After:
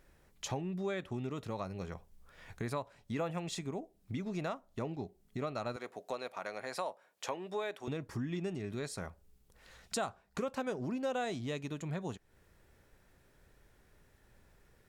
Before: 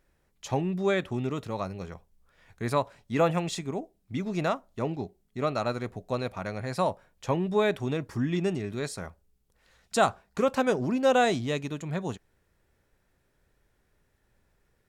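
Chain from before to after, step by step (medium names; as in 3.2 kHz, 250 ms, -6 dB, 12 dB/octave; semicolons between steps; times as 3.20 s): 5.76–7.88 s: high-pass 440 Hz 12 dB/octave; compression 3:1, threshold -45 dBFS, peak gain reduction 20 dB; trim +5 dB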